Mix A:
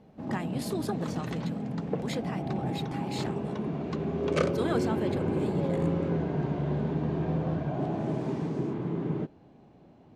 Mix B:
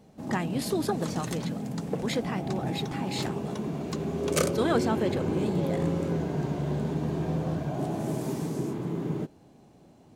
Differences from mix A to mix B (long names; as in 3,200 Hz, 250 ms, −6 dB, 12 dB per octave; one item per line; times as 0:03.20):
speech +5.0 dB
background: remove low-pass filter 3,000 Hz 12 dB per octave